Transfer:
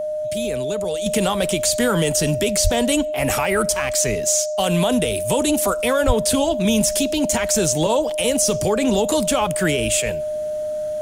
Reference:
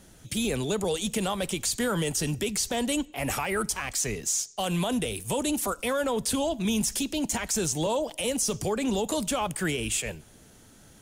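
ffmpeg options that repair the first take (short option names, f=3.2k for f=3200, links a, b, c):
-filter_complex "[0:a]bandreject=f=610:w=30,asplit=3[a][b][c];[a]afade=t=out:st=2.63:d=0.02[d];[b]highpass=f=140:w=0.5412,highpass=f=140:w=1.3066,afade=t=in:st=2.63:d=0.02,afade=t=out:st=2.75:d=0.02[e];[c]afade=t=in:st=2.75:d=0.02[f];[d][e][f]amix=inputs=3:normalize=0,asplit=3[g][h][i];[g]afade=t=out:st=6.06:d=0.02[j];[h]highpass=f=140:w=0.5412,highpass=f=140:w=1.3066,afade=t=in:st=6.06:d=0.02,afade=t=out:st=6.18:d=0.02[k];[i]afade=t=in:st=6.18:d=0.02[l];[j][k][l]amix=inputs=3:normalize=0,asetnsamples=n=441:p=0,asendcmd='1.06 volume volume -8dB',volume=0dB"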